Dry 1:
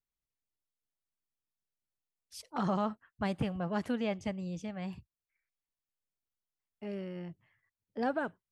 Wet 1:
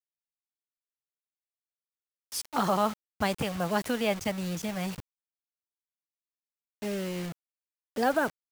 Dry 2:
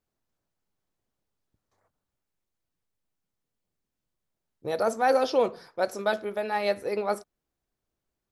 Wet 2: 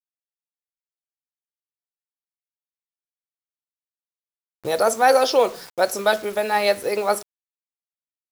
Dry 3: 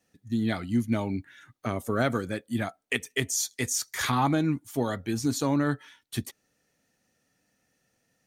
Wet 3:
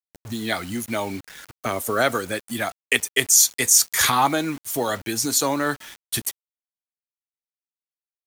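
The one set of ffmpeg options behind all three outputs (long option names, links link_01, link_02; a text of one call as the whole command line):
ffmpeg -i in.wav -filter_complex "[0:a]acrossover=split=390[link_01][link_02];[link_01]acompressor=threshold=-39dB:ratio=12[link_03];[link_02]crystalizer=i=1.5:c=0[link_04];[link_03][link_04]amix=inputs=2:normalize=0,acrusher=bits=7:mix=0:aa=0.000001,volume=7.5dB" out.wav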